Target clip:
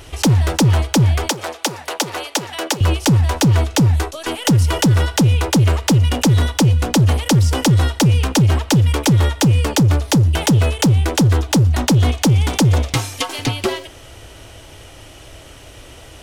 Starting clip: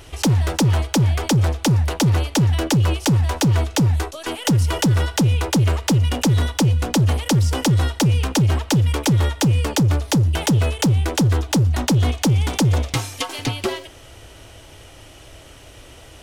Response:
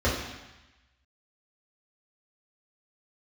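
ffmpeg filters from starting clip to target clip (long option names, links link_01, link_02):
-filter_complex "[0:a]asettb=1/sr,asplit=3[link_01][link_02][link_03];[link_01]atrim=end=1.304[link_04];[link_02]atrim=start=1.3:end=2.81,asetpts=PTS-STARTPTS,afade=type=in:duration=0.004:curve=qsin,afade=type=out:start_time=1.506:duration=0.004:curve=qsin,highpass=500[link_05];[link_03]atrim=start=2.806[link_06];[link_04][link_05]acrossfade=duration=0.004:curve1=hsin:curve2=qsin[link_07];[link_07][link_06]acrossfade=duration=0.004:curve1=qsin:curve2=hsin,volume=3.5dB"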